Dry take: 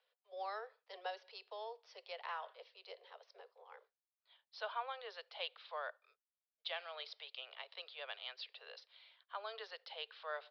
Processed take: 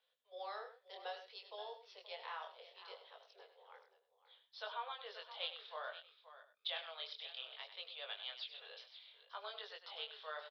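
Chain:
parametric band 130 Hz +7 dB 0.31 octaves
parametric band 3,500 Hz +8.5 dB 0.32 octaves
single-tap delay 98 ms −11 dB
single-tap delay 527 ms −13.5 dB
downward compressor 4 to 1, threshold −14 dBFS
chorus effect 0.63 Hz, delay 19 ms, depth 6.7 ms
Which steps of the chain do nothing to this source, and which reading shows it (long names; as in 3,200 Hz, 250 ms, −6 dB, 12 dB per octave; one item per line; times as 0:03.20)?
parametric band 130 Hz: nothing at its input below 360 Hz
downward compressor, threshold −14 dBFS: peak of its input −23.5 dBFS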